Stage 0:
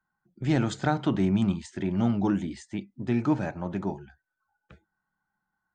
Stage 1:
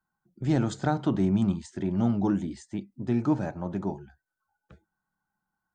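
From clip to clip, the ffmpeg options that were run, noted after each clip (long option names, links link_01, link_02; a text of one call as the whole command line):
ffmpeg -i in.wav -af "equalizer=frequency=2400:width=0.99:gain=-7.5" out.wav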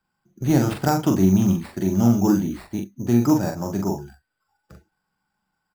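ffmpeg -i in.wav -filter_complex "[0:a]acrusher=samples=7:mix=1:aa=0.000001,asplit=2[link_01][link_02];[link_02]adelay=42,volume=-4.5dB[link_03];[link_01][link_03]amix=inputs=2:normalize=0,volume=5.5dB" out.wav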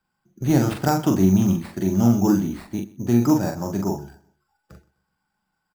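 ffmpeg -i in.wav -af "aecho=1:1:126|252|378:0.0891|0.0303|0.0103" out.wav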